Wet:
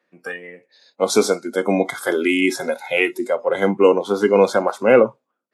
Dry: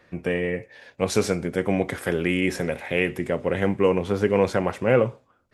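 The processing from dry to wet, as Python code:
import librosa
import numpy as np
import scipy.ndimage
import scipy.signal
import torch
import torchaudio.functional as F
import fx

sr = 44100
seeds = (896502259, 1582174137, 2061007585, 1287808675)

y = fx.noise_reduce_blind(x, sr, reduce_db=20)
y = scipy.signal.sosfilt(scipy.signal.butter(4, 200.0, 'highpass', fs=sr, output='sos'), y)
y = F.gain(torch.from_numpy(y), 7.0).numpy()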